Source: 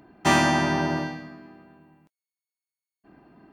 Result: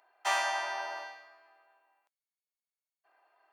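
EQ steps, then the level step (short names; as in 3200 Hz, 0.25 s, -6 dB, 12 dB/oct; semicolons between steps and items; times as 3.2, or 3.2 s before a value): inverse Chebyshev high-pass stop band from 240 Hz, stop band 50 dB; -8.0 dB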